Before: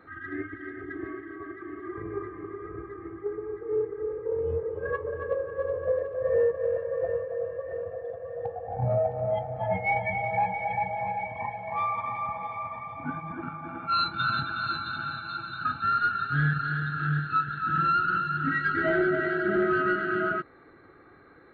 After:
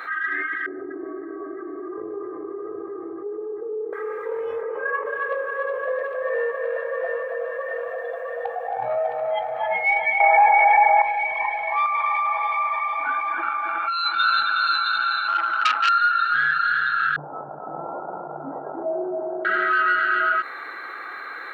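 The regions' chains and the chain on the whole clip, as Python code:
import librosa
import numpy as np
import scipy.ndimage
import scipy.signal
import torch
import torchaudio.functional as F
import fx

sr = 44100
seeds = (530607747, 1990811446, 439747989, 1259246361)

y = fx.chain(x, sr, fx.ladder_lowpass(hz=640.0, resonance_pct=30),
    fx.env_flatten(amount_pct=50), at=(0.66, 3.93))
y = fx.chain(y, sr, fx.cheby1_bandpass(low_hz=170.0, high_hz=2900.0, order=3),
    fx.air_absorb(metres=440.0),
    fx.env_flatten(amount_pct=50), at=(4.61, 5.06))
y = fx.chain(y, sr, fx.lowpass(hz=2400.0, slope=12),
    fx.peak_eq(hz=1000.0, db=14.5, octaves=2.7),
    fx.env_flatten(amount_pct=50), at=(10.2, 11.02))
y = fx.chain(y, sr, fx.steep_highpass(hz=270.0, slope=72),
    fx.over_compress(threshold_db=-32.0, ratio=-1.0), at=(11.86, 14.12))
y = fx.chain(y, sr, fx.curve_eq(hz=(160.0, 260.0, 710.0, 1400.0, 3000.0, 5000.0), db=(0, 8, 14, 4, -20, -10)),
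    fx.transformer_sat(knee_hz=2100.0), at=(15.28, 15.89))
y = fx.chain(y, sr, fx.cvsd(bps=16000),
    fx.steep_lowpass(hz=800.0, slope=48), at=(17.16, 19.45))
y = scipy.signal.sosfilt(scipy.signal.butter(2, 1200.0, 'highpass', fs=sr, output='sos'), y)
y = fx.env_flatten(y, sr, amount_pct=50)
y = y * librosa.db_to_amplitude(3.5)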